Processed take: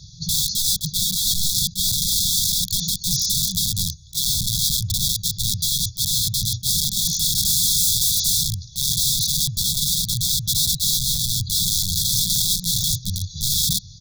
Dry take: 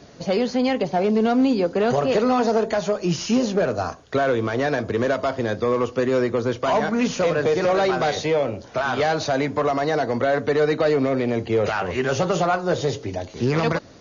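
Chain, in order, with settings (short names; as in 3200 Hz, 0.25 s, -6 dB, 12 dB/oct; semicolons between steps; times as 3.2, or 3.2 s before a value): 7.37–8.41 spectral limiter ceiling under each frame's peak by 18 dB; comb 2.3 ms, depth 83%; wrapped overs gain 19.5 dB; brick-wall FIR band-stop 200–3300 Hz; attack slew limiter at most 390 dB/s; gain +7.5 dB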